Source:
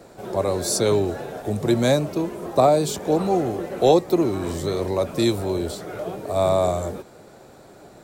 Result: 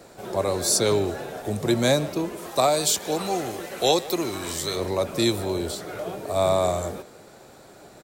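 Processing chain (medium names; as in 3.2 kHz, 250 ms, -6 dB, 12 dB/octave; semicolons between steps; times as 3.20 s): tilt shelf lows -3 dB, about 1.2 kHz, from 2.36 s lows -9 dB, from 4.75 s lows -3 dB; speakerphone echo 150 ms, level -16 dB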